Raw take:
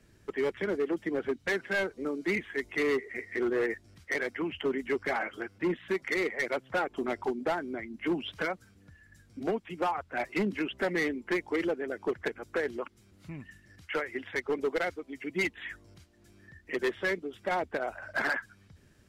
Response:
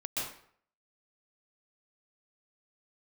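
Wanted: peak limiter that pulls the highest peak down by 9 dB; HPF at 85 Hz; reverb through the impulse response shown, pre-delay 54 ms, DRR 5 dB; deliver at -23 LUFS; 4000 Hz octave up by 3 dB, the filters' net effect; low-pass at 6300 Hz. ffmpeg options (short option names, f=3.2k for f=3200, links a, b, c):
-filter_complex "[0:a]highpass=85,lowpass=6.3k,equalizer=f=4k:t=o:g=4.5,alimiter=level_in=4.5dB:limit=-24dB:level=0:latency=1,volume=-4.5dB,asplit=2[a][b];[1:a]atrim=start_sample=2205,adelay=54[c];[b][c]afir=irnorm=-1:irlink=0,volume=-9dB[d];[a][d]amix=inputs=2:normalize=0,volume=14dB"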